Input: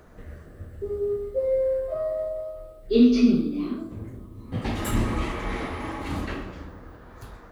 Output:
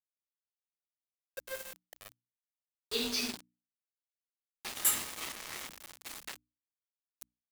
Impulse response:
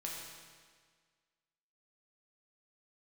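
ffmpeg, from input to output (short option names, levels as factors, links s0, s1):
-af "aderivative,aeval=exprs='val(0)*gte(abs(val(0)),0.00794)':c=same,bandreject=f=60:t=h:w=6,bandreject=f=120:t=h:w=6,bandreject=f=180:t=h:w=6,bandreject=f=240:t=h:w=6,bandreject=f=300:t=h:w=6,volume=2.66"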